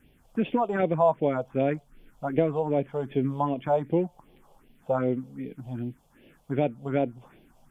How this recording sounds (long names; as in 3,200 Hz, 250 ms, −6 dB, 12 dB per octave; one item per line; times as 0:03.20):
phaser sweep stages 4, 2.6 Hz, lowest notch 290–1,300 Hz